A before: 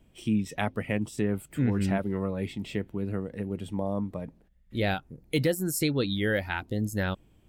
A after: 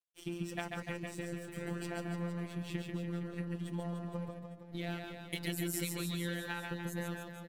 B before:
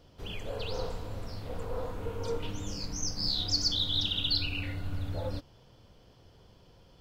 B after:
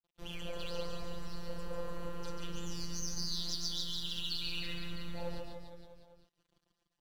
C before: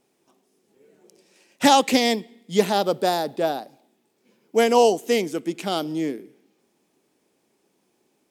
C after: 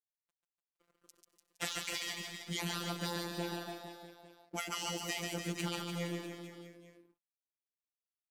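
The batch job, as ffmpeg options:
-filter_complex "[0:a]bandreject=f=5.2k:w=29,afftfilt=real='re*lt(hypot(re,im),0.355)':imag='im*lt(hypot(re,im),0.355)':win_size=1024:overlap=0.75,acompressor=threshold=-32dB:ratio=16,aeval=exprs='sgn(val(0))*max(abs(val(0))-0.00299,0)':c=same,afftfilt=real='hypot(re,im)*cos(PI*b)':imag='0':win_size=1024:overlap=0.75,asplit=2[a][b];[b]aecho=0:1:140|294|463.4|649.7|854.7:0.631|0.398|0.251|0.158|0.1[c];[a][c]amix=inputs=2:normalize=0,volume=1.5dB" -ar 44100 -c:a libmp3lame -b:a 128k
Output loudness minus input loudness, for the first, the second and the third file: -10.0, -7.5, -17.5 LU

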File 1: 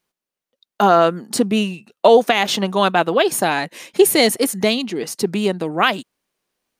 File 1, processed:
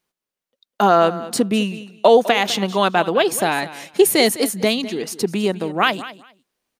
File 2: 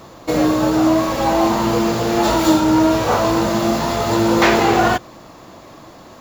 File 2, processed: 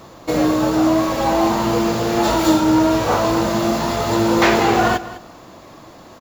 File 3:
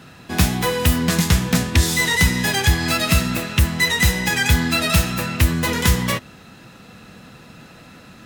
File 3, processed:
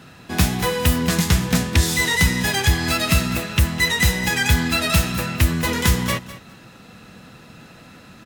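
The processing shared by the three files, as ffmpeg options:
-af "aecho=1:1:204|408:0.158|0.0269,volume=-1dB"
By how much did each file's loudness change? -1.0, -1.0, -1.0 LU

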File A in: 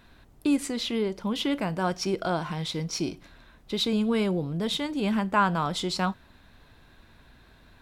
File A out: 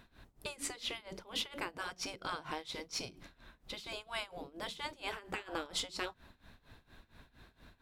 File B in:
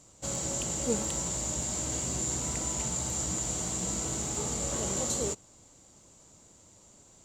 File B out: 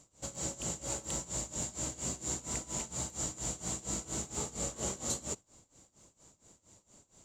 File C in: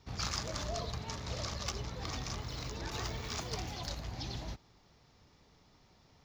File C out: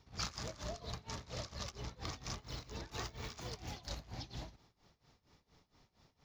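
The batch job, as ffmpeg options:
-af "afftfilt=real='re*lt(hypot(re,im),0.141)':imag='im*lt(hypot(re,im),0.141)':win_size=1024:overlap=0.75,tremolo=f=4.3:d=0.89,volume=-1.5dB"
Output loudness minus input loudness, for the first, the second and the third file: -13.5, -6.0, -6.0 LU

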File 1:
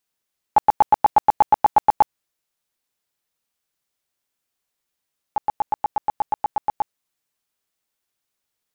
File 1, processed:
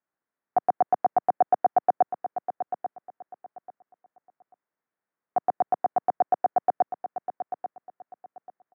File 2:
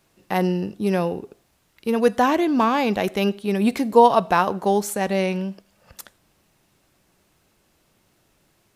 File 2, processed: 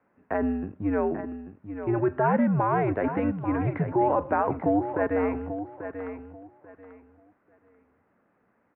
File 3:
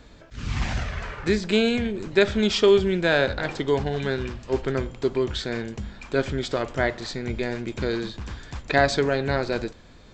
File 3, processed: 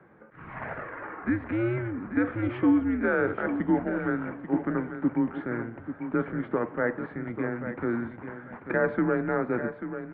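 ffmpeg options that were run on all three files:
-af "alimiter=limit=-12.5dB:level=0:latency=1:release=22,highpass=f=270:t=q:w=0.5412,highpass=f=270:t=q:w=1.307,lowpass=f=2k:t=q:w=0.5176,lowpass=f=2k:t=q:w=0.7071,lowpass=f=2k:t=q:w=1.932,afreqshift=-110,aecho=1:1:839|1678|2517:0.316|0.0696|0.0153,volume=-1dB"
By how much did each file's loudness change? -6.0, -6.0, -4.5 LU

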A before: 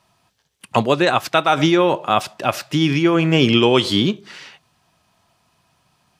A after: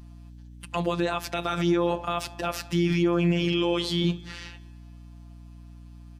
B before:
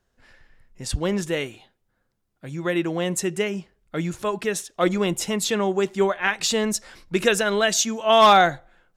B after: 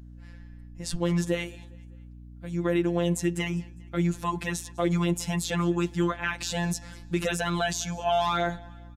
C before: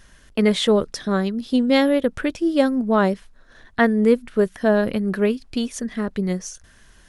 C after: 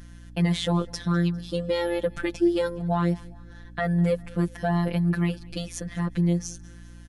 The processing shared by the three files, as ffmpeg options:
-filter_complex "[0:a]afftfilt=real='hypot(re,im)*cos(PI*b)':imag='0':win_size=1024:overlap=0.75,alimiter=limit=-14dB:level=0:latency=1:release=64,equalizer=f=110:w=0.39:g=3,aeval=exprs='val(0)+0.00631*(sin(2*PI*60*n/s)+sin(2*PI*2*60*n/s)/2+sin(2*PI*3*60*n/s)/3+sin(2*PI*4*60*n/s)/4+sin(2*PI*5*60*n/s)/5)':c=same,asplit=2[a][b];[b]aecho=0:1:202|404|606:0.0631|0.0303|0.0145[c];[a][c]amix=inputs=2:normalize=0"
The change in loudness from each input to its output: -9.0, -6.5, -5.5 LU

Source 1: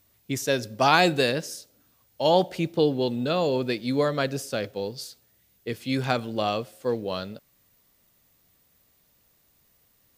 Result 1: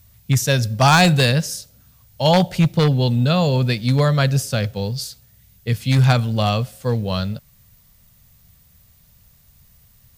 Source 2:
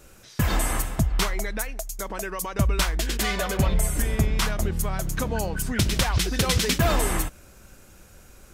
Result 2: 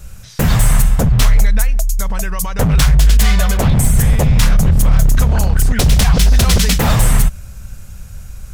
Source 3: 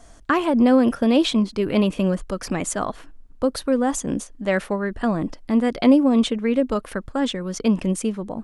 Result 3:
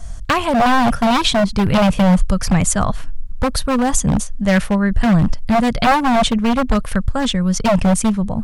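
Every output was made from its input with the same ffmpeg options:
-af "bass=f=250:g=15,treble=f=4k:g=3,aeval=exprs='0.316*(abs(mod(val(0)/0.316+3,4)-2)-1)':c=same,equalizer=f=320:w=1.5:g=-14.5,volume=6.5dB"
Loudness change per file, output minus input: +7.5, +11.5, +5.0 LU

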